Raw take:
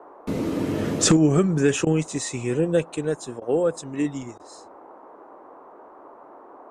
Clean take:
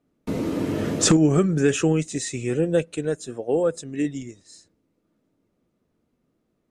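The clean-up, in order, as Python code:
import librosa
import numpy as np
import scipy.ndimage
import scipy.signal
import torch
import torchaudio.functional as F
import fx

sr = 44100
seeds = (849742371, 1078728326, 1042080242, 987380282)

y = fx.fix_interpolate(x, sr, at_s=(1.85, 3.4, 4.38), length_ms=15.0)
y = fx.noise_reduce(y, sr, print_start_s=5.54, print_end_s=6.04, reduce_db=26.0)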